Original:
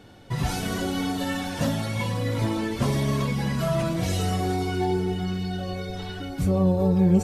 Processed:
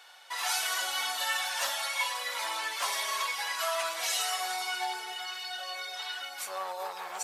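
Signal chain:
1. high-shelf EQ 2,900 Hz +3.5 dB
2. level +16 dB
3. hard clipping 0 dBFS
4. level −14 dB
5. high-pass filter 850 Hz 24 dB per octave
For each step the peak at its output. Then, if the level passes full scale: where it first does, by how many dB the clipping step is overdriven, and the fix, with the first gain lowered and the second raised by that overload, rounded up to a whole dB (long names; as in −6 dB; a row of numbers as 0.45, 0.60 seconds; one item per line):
−9.5, +6.5, 0.0, −14.0, −17.0 dBFS
step 2, 6.5 dB
step 2 +9 dB, step 4 −7 dB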